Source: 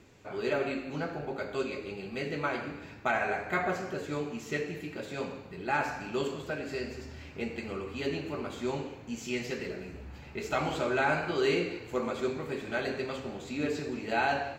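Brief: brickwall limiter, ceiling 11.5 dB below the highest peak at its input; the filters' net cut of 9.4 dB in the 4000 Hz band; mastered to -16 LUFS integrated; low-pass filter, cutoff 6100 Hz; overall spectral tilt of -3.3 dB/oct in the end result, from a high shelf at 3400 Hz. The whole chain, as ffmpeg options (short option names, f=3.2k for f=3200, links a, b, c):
-af "lowpass=6.1k,highshelf=f=3.4k:g=-9,equalizer=f=4k:t=o:g=-6,volume=23dB,alimiter=limit=-6dB:level=0:latency=1"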